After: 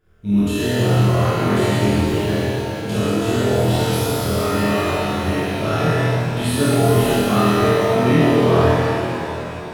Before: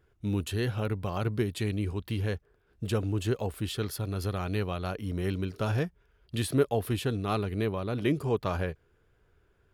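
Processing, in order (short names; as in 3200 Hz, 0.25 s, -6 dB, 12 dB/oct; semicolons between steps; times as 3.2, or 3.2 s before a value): on a send: flutter echo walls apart 4.2 m, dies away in 0.83 s; on the sum: shimmer reverb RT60 3 s, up +7 st, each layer -8 dB, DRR -10 dB; gain -1.5 dB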